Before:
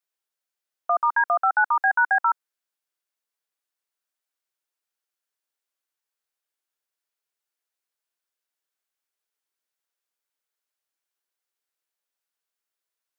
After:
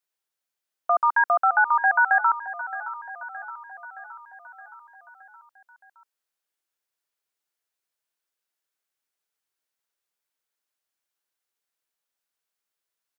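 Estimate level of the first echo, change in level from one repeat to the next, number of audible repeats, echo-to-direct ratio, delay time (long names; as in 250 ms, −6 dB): −14.0 dB, −4.5 dB, 5, −12.0 dB, 619 ms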